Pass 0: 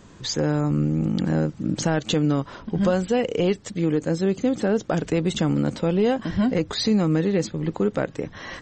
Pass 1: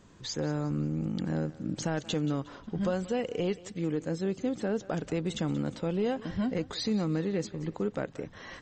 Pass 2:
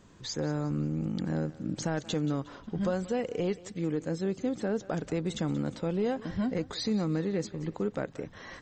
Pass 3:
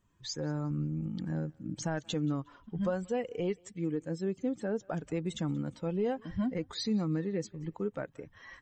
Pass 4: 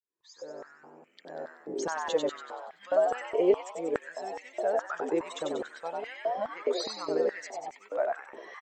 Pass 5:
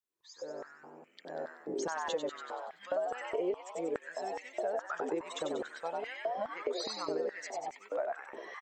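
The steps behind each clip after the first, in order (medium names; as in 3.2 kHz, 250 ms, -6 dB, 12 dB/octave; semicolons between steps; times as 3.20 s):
thinning echo 180 ms, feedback 40%, level -17 dB; trim -9 dB
dynamic bell 2.9 kHz, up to -5 dB, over -58 dBFS, Q 4.2
expander on every frequency bin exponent 1.5
fade-in on the opening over 1.90 s; frequency-shifting echo 95 ms, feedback 50%, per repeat +94 Hz, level -3 dB; step-sequenced high-pass 4.8 Hz 400–2100 Hz
compression 4:1, threshold -32 dBFS, peak gain reduction 13 dB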